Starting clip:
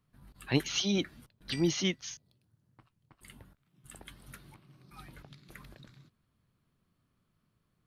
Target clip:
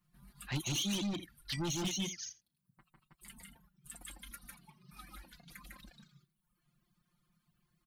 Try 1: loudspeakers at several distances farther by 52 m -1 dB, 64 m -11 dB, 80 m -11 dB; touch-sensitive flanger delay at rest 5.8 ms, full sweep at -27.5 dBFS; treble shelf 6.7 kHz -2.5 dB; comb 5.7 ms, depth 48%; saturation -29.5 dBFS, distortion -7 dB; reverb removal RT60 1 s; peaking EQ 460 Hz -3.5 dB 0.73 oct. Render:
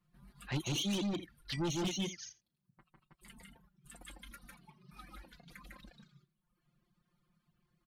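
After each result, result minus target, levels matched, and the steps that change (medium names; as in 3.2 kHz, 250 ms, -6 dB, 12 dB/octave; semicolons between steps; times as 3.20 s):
8 kHz band -5.0 dB; 500 Hz band +3.0 dB
change: treble shelf 6.7 kHz +8.5 dB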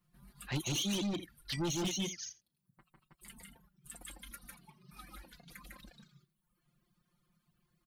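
500 Hz band +3.0 dB
change: peaking EQ 460 Hz -10.5 dB 0.73 oct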